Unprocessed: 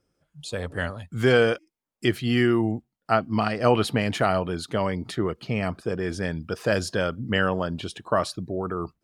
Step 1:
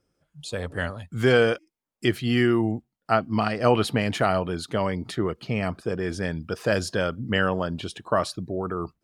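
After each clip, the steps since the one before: no audible change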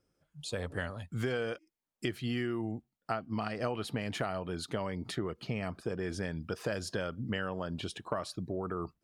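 compression 6:1, threshold -27 dBFS, peak gain reduction 13 dB; trim -4 dB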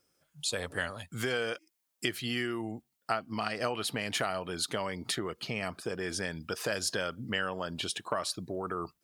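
tilt EQ +2.5 dB/octave; trim +3.5 dB

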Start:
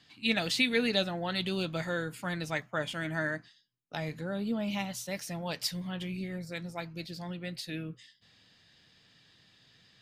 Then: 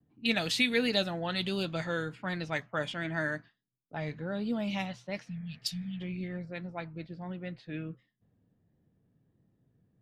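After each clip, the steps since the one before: spectral replace 5.30–5.98 s, 270–2500 Hz before; level-controlled noise filter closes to 360 Hz, open at -28 dBFS; vibrato 1.4 Hz 48 cents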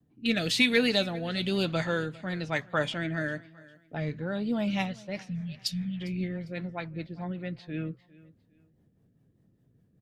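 in parallel at -7.5 dB: saturation -21 dBFS, distortion -17 dB; on the sum: rotary cabinet horn 1 Hz, later 5 Hz, at 3.84 s; feedback delay 402 ms, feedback 30%, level -21.5 dB; trim +2.5 dB

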